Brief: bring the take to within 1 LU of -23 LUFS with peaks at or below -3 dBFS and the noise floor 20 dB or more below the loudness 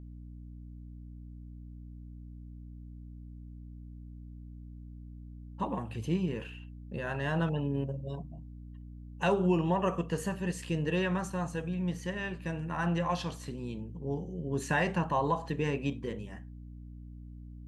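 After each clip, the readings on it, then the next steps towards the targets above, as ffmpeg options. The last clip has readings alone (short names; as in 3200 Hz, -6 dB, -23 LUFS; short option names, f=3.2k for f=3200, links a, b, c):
hum 60 Hz; harmonics up to 300 Hz; hum level -44 dBFS; loudness -33.0 LUFS; peak -16.0 dBFS; loudness target -23.0 LUFS
-> -af "bandreject=f=60:t=h:w=6,bandreject=f=120:t=h:w=6,bandreject=f=180:t=h:w=6,bandreject=f=240:t=h:w=6,bandreject=f=300:t=h:w=6"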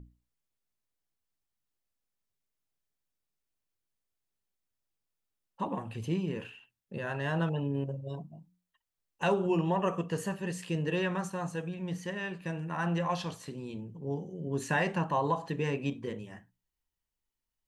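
hum none; loudness -33.5 LUFS; peak -16.0 dBFS; loudness target -23.0 LUFS
-> -af "volume=10.5dB"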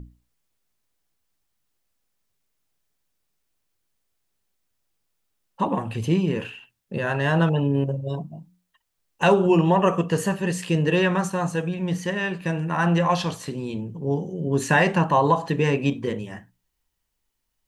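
loudness -23.0 LUFS; peak -5.5 dBFS; noise floor -77 dBFS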